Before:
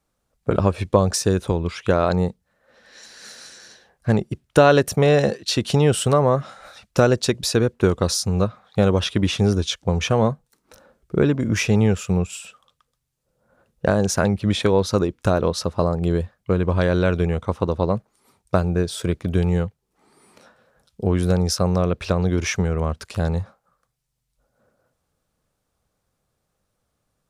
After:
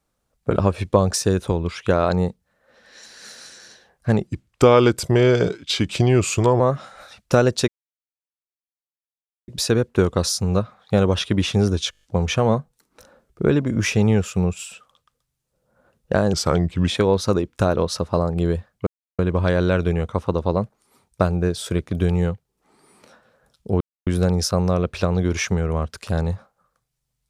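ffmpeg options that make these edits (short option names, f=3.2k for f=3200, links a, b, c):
-filter_complex "[0:a]asplit=14[a][b][c][d][e][f][g][h][i][j][k][l][m][n];[a]atrim=end=4.274[o];[b]atrim=start=4.27:end=6.25,asetpts=PTS-STARTPTS,asetrate=37485,aresample=44100,atrim=end_sample=102727,asetpts=PTS-STARTPTS[p];[c]atrim=start=6.246:end=7.33,asetpts=PTS-STARTPTS,afade=t=out:st=1.08:d=0.004:c=hsin,apad=pad_dur=1.8[q];[d]atrim=start=7.33:end=9.782,asetpts=PTS-STARTPTS,afade=t=in:d=0.004:c=hsin[r];[e]atrim=start=9.758:end=9.782[s];[f]atrim=start=9.758:end=9.782[t];[g]atrim=start=9.758:end=9.782[u];[h]atrim=start=9.758:end=9.782[v];[i]atrim=start=9.758:end=9.782[w];[j]atrim=start=9.758:end=14.064[x];[k]atrim=start=14.06:end=14.53,asetpts=PTS-STARTPTS,asetrate=37926,aresample=44100,atrim=end_sample=24101,asetpts=PTS-STARTPTS[y];[l]atrim=start=14.526:end=16.52,asetpts=PTS-STARTPTS,afade=t=out:st=1.99:d=0.004:c=hsin,apad=pad_dur=0.32[z];[m]atrim=start=16.52:end=21.14,asetpts=PTS-STARTPTS,afade=t=in:d=0.004:c=hsin,afade=t=out:st=4.616:d=0.004:c=hsin,apad=pad_dur=0.26[aa];[n]atrim=start=21.14,asetpts=PTS-STARTPTS,afade=t=in:d=0.004:c=hsin[ab];[o][p]acrossfade=d=0.004:c1=hsin:c2=hsin[ac];[q][r]concat=n=2:v=0:a=1[ad];[ac][ad]acrossfade=d=0.004:c1=hsin:c2=hsin[ae];[ae][s]acrossfade=d=0.004:c1=hsin:c2=hsin[af];[af][t]acrossfade=d=0.004:c1=hsin:c2=hsin[ag];[ag][u]acrossfade=d=0.004:c1=hsin:c2=hsin[ah];[ah][v]acrossfade=d=0.004:c1=hsin:c2=hsin[ai];[ai][w]acrossfade=d=0.004:c1=hsin:c2=hsin[aj];[aj][x]acrossfade=d=0.004:c1=hsin:c2=hsin[ak];[ak][y]acrossfade=d=0.004:c1=hsin:c2=hsin[al];[z][aa][ab]concat=n=3:v=0:a=1[am];[al][am]acrossfade=d=0.004:c1=hsin:c2=hsin"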